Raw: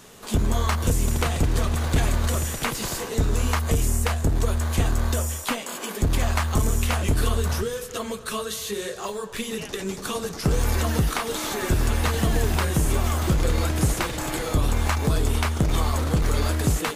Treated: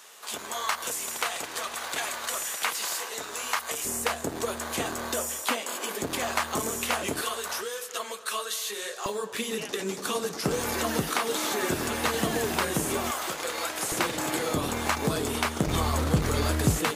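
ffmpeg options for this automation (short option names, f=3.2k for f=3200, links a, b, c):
-af "asetnsamples=n=441:p=0,asendcmd='3.85 highpass f 320;7.21 highpass f 670;9.06 highpass f 230;13.11 highpass f 650;13.92 highpass f 190;15.67 highpass f 87',highpass=810"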